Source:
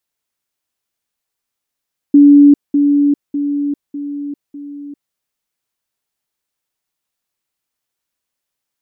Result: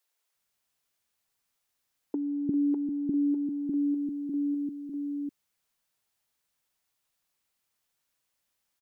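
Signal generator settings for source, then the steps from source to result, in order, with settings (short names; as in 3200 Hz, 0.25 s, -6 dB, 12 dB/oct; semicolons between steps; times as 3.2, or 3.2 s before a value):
level ladder 287 Hz -2.5 dBFS, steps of -6 dB, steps 5, 0.40 s 0.20 s
limiter -7.5 dBFS; compressor 5:1, threshold -22 dBFS; bands offset in time highs, lows 0.35 s, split 340 Hz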